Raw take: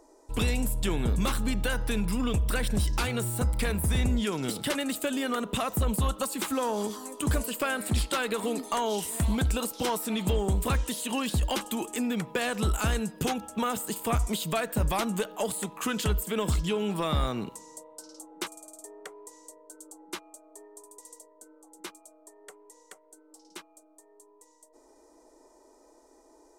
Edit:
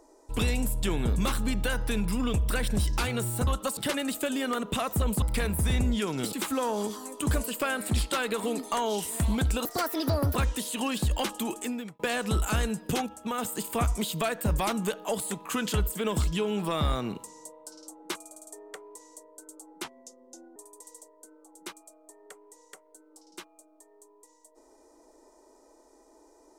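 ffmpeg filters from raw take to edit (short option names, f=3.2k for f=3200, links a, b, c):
-filter_complex "[0:a]asplit=12[a][b][c][d][e][f][g][h][i][j][k][l];[a]atrim=end=3.472[m];[b]atrim=start=6.028:end=6.332[n];[c]atrim=start=4.578:end=6.032[o];[d]atrim=start=3.468:end=4.582[p];[e]atrim=start=6.328:end=9.654[q];[f]atrim=start=9.65:end=10.67,asetpts=PTS-STARTPTS,asetrate=63945,aresample=44100,atrim=end_sample=31022,asetpts=PTS-STARTPTS[r];[g]atrim=start=10.666:end=12.31,asetpts=PTS-STARTPTS,afade=t=out:st=1.224:d=0.42[s];[h]atrim=start=12.31:end=13.382,asetpts=PTS-STARTPTS,afade=t=in:d=0.004:c=hsin[t];[i]atrim=start=13.378:end=13.702,asetpts=PTS-STARTPTS,volume=-3.5dB[u];[j]atrim=start=13.698:end=20.164[v];[k]atrim=start=20.16:end=20.74,asetpts=PTS-STARTPTS,asetrate=35721,aresample=44100[w];[l]atrim=start=20.736[x];[m][n]acrossfade=d=0.004:c1=hsin:c2=hsin[y];[y][o]acrossfade=d=0.004:c1=hsin:c2=hsin[z];[z][p]acrossfade=d=0.004:c1=hsin:c2=hsin[aa];[aa][q]acrossfade=d=0.004:c1=hsin:c2=hsin[ab];[ab][r]acrossfade=d=0.004:c1=hsin:c2=hsin[ac];[s][t]concat=n=2:v=0:a=1[ad];[ac][ad]acrossfade=d=0.004:c1=hsin:c2=hsin[ae];[ae][u]acrossfade=d=0.004:c1=hsin:c2=hsin[af];[af][v]acrossfade=d=0.004:c1=hsin:c2=hsin[ag];[ag][w]acrossfade=d=0.004:c1=hsin:c2=hsin[ah];[ah][x]acrossfade=d=0.004:c1=hsin:c2=hsin"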